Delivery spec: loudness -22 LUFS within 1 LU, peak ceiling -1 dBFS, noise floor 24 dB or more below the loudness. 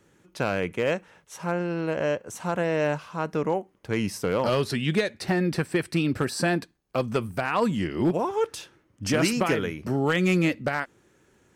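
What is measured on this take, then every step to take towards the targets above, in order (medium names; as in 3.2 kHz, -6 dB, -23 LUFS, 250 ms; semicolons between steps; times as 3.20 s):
clipped samples 0.4%; clipping level -15.0 dBFS; loudness -26.5 LUFS; peak level -15.0 dBFS; loudness target -22.0 LUFS
-> clip repair -15 dBFS; trim +4.5 dB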